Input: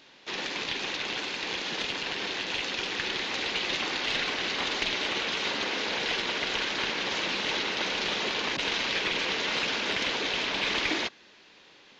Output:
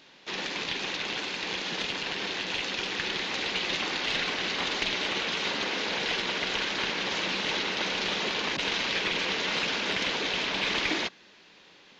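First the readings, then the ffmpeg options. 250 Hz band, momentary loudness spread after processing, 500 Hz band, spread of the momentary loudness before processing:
+1.0 dB, 4 LU, 0.0 dB, 4 LU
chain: -af "equalizer=f=180:t=o:w=0.27:g=5.5"

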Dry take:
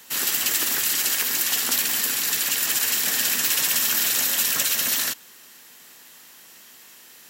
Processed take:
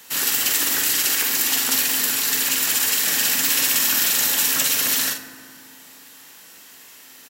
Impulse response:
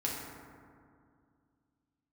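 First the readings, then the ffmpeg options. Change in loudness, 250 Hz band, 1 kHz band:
+2.5 dB, +5.5 dB, +3.0 dB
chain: -filter_complex "[0:a]asplit=2[a][b];[b]adelay=45,volume=-7dB[c];[a][c]amix=inputs=2:normalize=0,asplit=2[d][e];[1:a]atrim=start_sample=2205[f];[e][f]afir=irnorm=-1:irlink=0,volume=-8.5dB[g];[d][g]amix=inputs=2:normalize=0,volume=-1dB"

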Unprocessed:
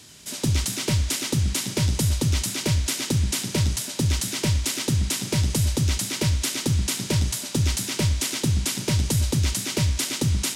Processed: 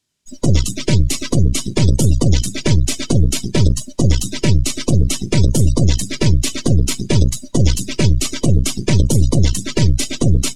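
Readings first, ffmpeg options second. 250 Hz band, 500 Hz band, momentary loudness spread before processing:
+9.5 dB, +9.5 dB, 2 LU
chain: -af "aeval=exprs='0.282*(cos(1*acos(clip(val(0)/0.282,-1,1)))-cos(1*PI/2))+0.0562*(cos(4*acos(clip(val(0)/0.282,-1,1)))-cos(4*PI/2))+0.1*(cos(6*acos(clip(val(0)/0.282,-1,1)))-cos(6*PI/2))':c=same,afftdn=nr=34:nf=-27,volume=8dB"

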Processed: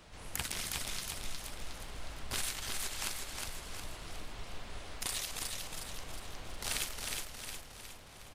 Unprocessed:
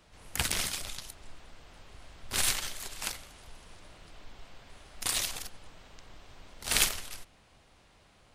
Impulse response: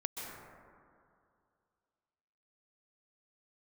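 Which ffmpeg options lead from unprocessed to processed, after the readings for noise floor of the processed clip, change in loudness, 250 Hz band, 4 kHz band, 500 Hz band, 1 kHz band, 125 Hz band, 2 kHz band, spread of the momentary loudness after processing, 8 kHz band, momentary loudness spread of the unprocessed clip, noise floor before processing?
-52 dBFS, -8.5 dB, -2.0 dB, -5.0 dB, -2.0 dB, -2.5 dB, -1.5 dB, -5.0 dB, 11 LU, -5.5 dB, 19 LU, -62 dBFS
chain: -af "acompressor=threshold=-41dB:ratio=4,aecho=1:1:362|724|1086|1448|1810|2172:0.631|0.309|0.151|0.0742|0.0364|0.0178,volume=4.5dB"

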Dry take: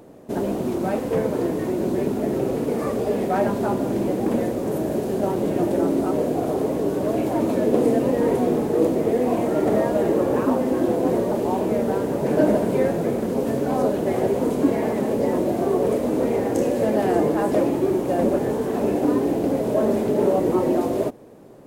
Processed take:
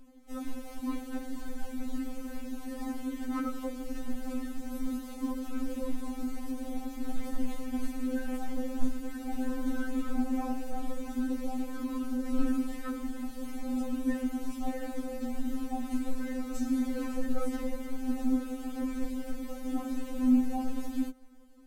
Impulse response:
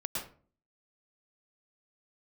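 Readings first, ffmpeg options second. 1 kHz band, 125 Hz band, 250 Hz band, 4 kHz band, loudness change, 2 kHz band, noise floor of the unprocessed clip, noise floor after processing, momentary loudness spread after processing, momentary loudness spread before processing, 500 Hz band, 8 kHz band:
-15.5 dB, under -20 dB, -9.5 dB, -9.0 dB, -13.5 dB, -10.5 dB, -27 dBFS, -43 dBFS, 8 LU, 4 LU, -23.0 dB, -8.5 dB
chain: -af "afreqshift=-320,afftfilt=real='re*3.46*eq(mod(b,12),0)':imag='im*3.46*eq(mod(b,12),0)':win_size=2048:overlap=0.75,volume=-6dB"

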